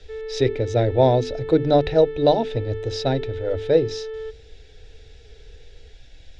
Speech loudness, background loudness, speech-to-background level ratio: -21.0 LUFS, -32.5 LUFS, 11.5 dB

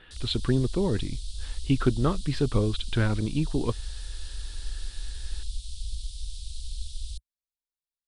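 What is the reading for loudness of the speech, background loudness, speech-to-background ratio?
-27.5 LUFS, -39.5 LUFS, 12.0 dB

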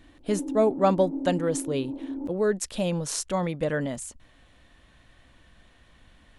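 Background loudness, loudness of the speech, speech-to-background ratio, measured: -34.5 LUFS, -27.0 LUFS, 7.5 dB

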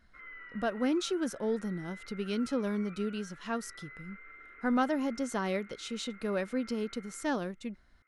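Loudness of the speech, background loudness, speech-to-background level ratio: -34.0 LUFS, -50.5 LUFS, 16.5 dB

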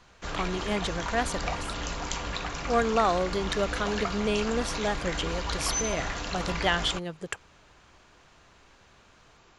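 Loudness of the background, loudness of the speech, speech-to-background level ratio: -33.0 LUFS, -30.0 LUFS, 3.0 dB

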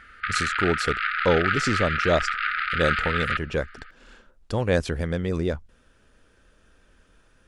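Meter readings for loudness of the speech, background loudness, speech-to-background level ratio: -26.5 LUFS, -25.5 LUFS, -1.0 dB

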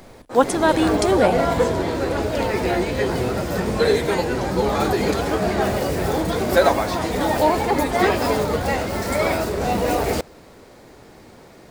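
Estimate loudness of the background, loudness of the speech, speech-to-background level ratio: -21.0 LUFS, -20.0 LUFS, 1.0 dB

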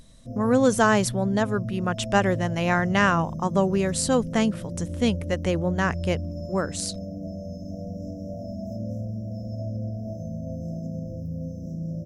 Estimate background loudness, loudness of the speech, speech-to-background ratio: -33.5 LUFS, -24.0 LUFS, 9.5 dB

